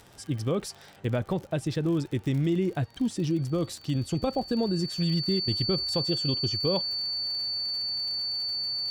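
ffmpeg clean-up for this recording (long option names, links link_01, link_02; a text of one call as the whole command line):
ffmpeg -i in.wav -af "adeclick=threshold=4,bandreject=frequency=4500:width=30" out.wav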